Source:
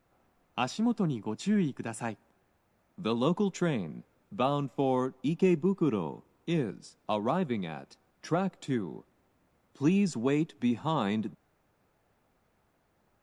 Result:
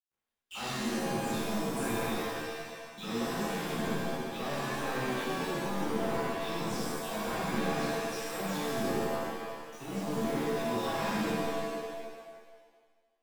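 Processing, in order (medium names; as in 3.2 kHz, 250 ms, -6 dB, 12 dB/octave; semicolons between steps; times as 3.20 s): delay that grows with frequency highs early, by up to 174 ms; reverse; compression 6:1, threshold -41 dBFS, peak gain reduction 19 dB; reverse; word length cut 10-bit, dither none; in parallel at -11.5 dB: sine folder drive 14 dB, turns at -30 dBFS; on the sum: gate -55 dBFS, range -28 dB; pitch-shifted reverb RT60 1.5 s, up +7 st, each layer -2 dB, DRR -8.5 dB; trim -5.5 dB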